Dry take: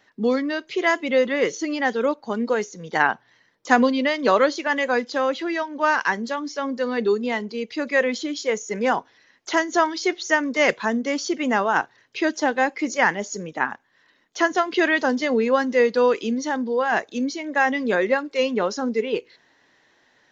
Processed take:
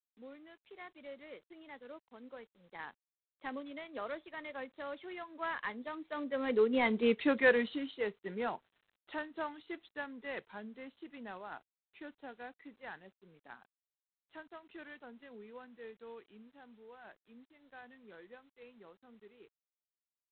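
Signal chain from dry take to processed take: Doppler pass-by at 7.07 s, 24 m/s, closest 5.2 m; G.726 24 kbps 8 kHz

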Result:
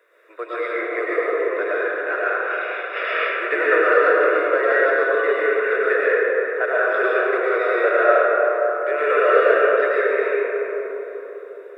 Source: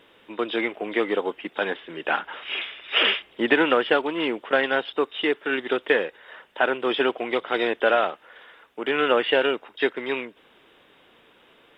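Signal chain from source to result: high-pass 420 Hz 24 dB/octave; static phaser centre 850 Hz, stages 6; algorithmic reverb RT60 4.5 s, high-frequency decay 0.3×, pre-delay 70 ms, DRR -8.5 dB; trim -1 dB

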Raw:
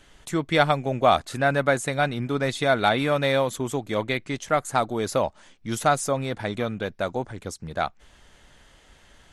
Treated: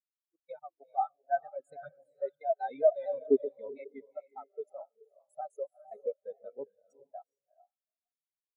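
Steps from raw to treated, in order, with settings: sawtooth pitch modulation -2 st, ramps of 256 ms; high-pass 240 Hz 6 dB/octave; treble shelf 4.5 kHz +8 dB; band-stop 1.3 kHz, Q 19; level rider gain up to 13 dB; spectral noise reduction 18 dB; level held to a coarse grid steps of 23 dB; phaser 0.55 Hz, delay 3.4 ms, feedback 34%; echo that smears into a reverb 457 ms, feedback 42%, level -3 dB; speed mistake 44.1 kHz file played as 48 kHz; spectral contrast expander 4:1; trim -6 dB

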